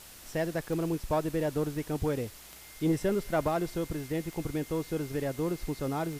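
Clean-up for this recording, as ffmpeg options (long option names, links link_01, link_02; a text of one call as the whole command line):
ffmpeg -i in.wav -af "adeclick=threshold=4,bandreject=frequency=2100:width=30,afwtdn=0.0035" out.wav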